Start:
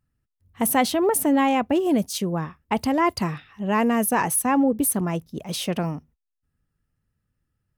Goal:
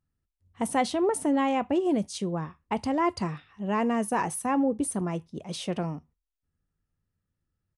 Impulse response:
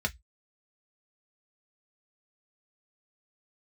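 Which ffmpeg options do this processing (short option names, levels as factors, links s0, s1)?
-filter_complex "[0:a]asplit=2[s0][s1];[s1]highshelf=f=5100:g=11[s2];[1:a]atrim=start_sample=2205,asetrate=24255,aresample=44100[s3];[s2][s3]afir=irnorm=-1:irlink=0,volume=0.075[s4];[s0][s4]amix=inputs=2:normalize=0,aresample=22050,aresample=44100,volume=0.501"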